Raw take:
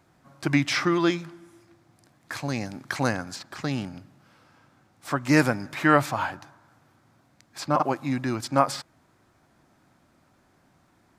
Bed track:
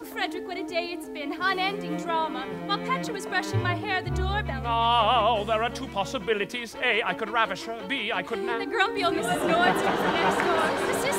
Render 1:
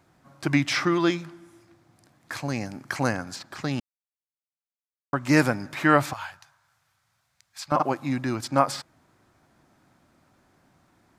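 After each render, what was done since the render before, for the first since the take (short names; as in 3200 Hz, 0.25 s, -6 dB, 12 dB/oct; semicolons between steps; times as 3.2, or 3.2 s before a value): 2.41–3.22 bell 3700 Hz -8 dB 0.26 oct; 3.8–5.13 mute; 6.13–7.72 passive tone stack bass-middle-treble 10-0-10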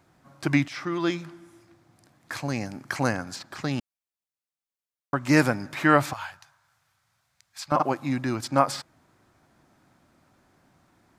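0.68–1.29 fade in, from -16 dB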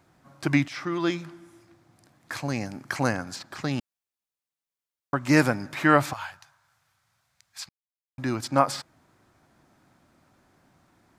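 7.69–8.18 mute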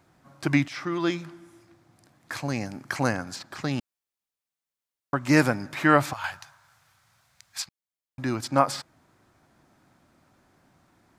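6.24–7.62 gain +7 dB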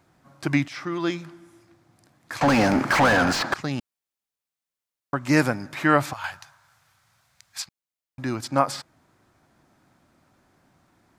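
2.41–3.54 overdrive pedal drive 38 dB, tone 1400 Hz, clips at -8.5 dBFS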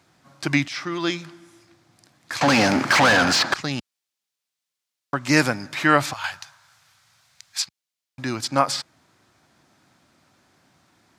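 HPF 71 Hz; bell 4500 Hz +8.5 dB 2.4 oct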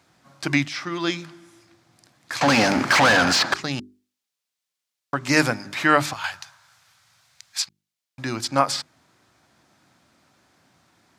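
notches 50/100/150/200/250/300/350/400 Hz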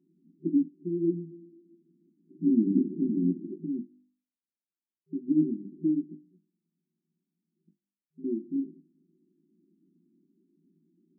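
FFT band-pass 160–390 Hz; notches 50/100/150/200/250/300 Hz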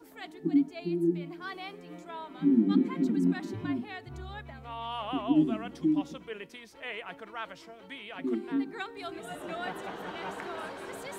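add bed track -15 dB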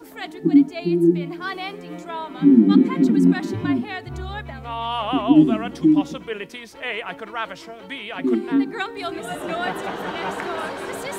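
gain +11 dB; limiter -3 dBFS, peak gain reduction 1 dB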